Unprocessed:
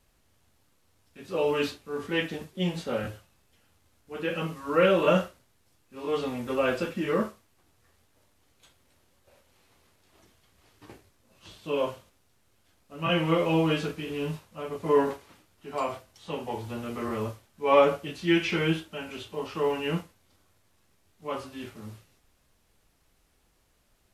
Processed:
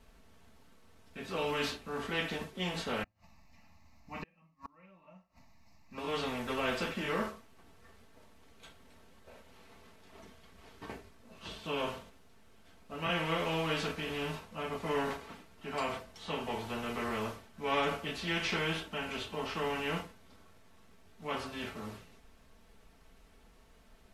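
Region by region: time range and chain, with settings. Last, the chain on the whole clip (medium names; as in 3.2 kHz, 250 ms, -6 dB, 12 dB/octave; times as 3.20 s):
3.03–5.98 s: static phaser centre 2.2 kHz, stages 8 + inverted gate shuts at -33 dBFS, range -38 dB
whole clip: treble shelf 4.7 kHz -11.5 dB; comb 4.5 ms, depth 52%; spectrum-flattening compressor 2:1; trim -9 dB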